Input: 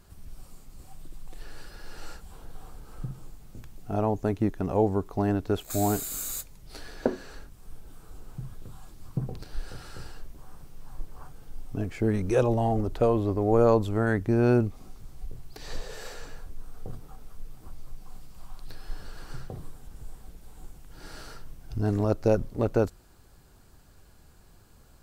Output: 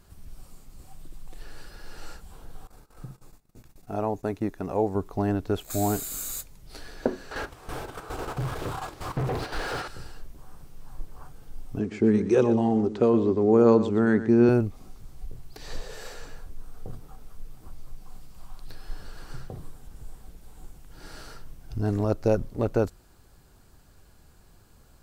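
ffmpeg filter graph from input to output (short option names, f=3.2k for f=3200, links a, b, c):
-filter_complex "[0:a]asettb=1/sr,asplit=3[a][b][c];[a]atrim=end=2.674[d];[b]atrim=start=2.67:end=4.95,asetpts=PTS-STARTPTS,afade=t=in:d=0.004:c=qsin,afade=t=out:st=2.276:d=0.004:c=qsin,agate=range=-18dB:threshold=-43dB:ratio=16:release=100:detection=peak,lowshelf=f=180:g=-8.5,bandreject=f=3.1k:w=9.3[e];[c]atrim=start=4.946[f];[d][e]acrossfade=d=0.004:c1=hsin:c2=qsin[g];[g][f]acrossfade=d=0.004:c1=qsin:c2=hsin,asettb=1/sr,asplit=3[h][i][j];[h]atrim=end=7.314[k];[i]atrim=start=7.31:end=9.88,asetpts=PTS-STARTPTS,afade=t=in:d=0.004:c=qsin,afade=t=out:st=2.566:d=0.004:c=qsin,agate=range=-14dB:threshold=-42dB:ratio=16:release=100:detection=peak,equalizer=f=200:w=2.9:g=-12,asplit=2[l][m];[m]highpass=f=720:p=1,volume=40dB,asoftclip=type=tanh:threshold=-19.5dB[n];[l][n]amix=inputs=2:normalize=0,lowpass=f=1.2k:p=1,volume=-6dB[o];[j]atrim=start=9.876[p];[k][o]acrossfade=d=0.004:c1=hsin:c2=qsin[q];[q][p]acrossfade=d=0.004:c1=qsin:c2=hsin,asettb=1/sr,asplit=3[r][s][t];[r]atrim=end=11.794[u];[s]atrim=start=11.79:end=14.49,asetpts=PTS-STARTPTS,afade=t=in:d=0.004:c=qsin,afade=t=out:st=2.696:d=0.004:c=qsin,highpass=130,equalizer=f=220:t=q:w=4:g=8,equalizer=f=390:t=q:w=4:g=9,equalizer=f=640:t=q:w=4:g=-7,lowpass=f=7.8k:w=0.5412,lowpass=f=7.8k:w=1.3066,aecho=1:1:120:0.237,atrim=end_sample=119070[v];[t]atrim=start=14.486[w];[u][v]acrossfade=d=0.004:c1=hsin:c2=qsin[x];[x][w]acrossfade=d=0.004:c1=qsin:c2=hsin"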